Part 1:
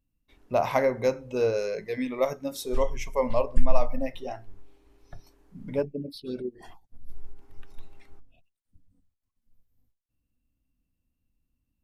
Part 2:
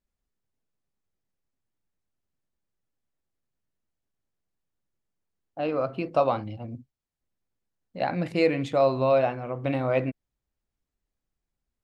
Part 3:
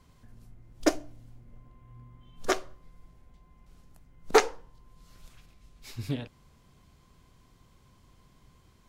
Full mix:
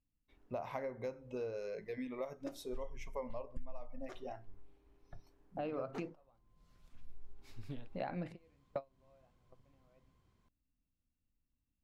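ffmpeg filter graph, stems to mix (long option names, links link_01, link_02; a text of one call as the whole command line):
ffmpeg -i stem1.wav -i stem2.wav -i stem3.wav -filter_complex "[0:a]volume=-8.5dB,asplit=3[link_01][link_02][link_03];[link_01]atrim=end=6,asetpts=PTS-STARTPTS,afade=type=out:start_time=5.996:duration=0.004:curve=hsin[link_04];[link_02]atrim=start=6:end=6.88,asetpts=PTS-STARTPTS,volume=0[link_05];[link_03]atrim=start=6.88,asetpts=PTS-STARTPTS,afade=type=in:duration=0.004:curve=hsin[link_06];[link_04][link_05][link_06]concat=n=3:v=0:a=1,asplit=2[link_07][link_08];[1:a]volume=-2dB[link_09];[2:a]adelay=1600,volume=-12dB,afade=type=in:start_time=6.36:duration=0.27:silence=0.375837[link_10];[link_08]apad=whole_len=521746[link_11];[link_09][link_11]sidechaingate=range=-45dB:threshold=-59dB:ratio=16:detection=peak[link_12];[link_07][link_12][link_10]amix=inputs=3:normalize=0,highshelf=frequency=3900:gain=-8.5,acompressor=threshold=-39dB:ratio=4" out.wav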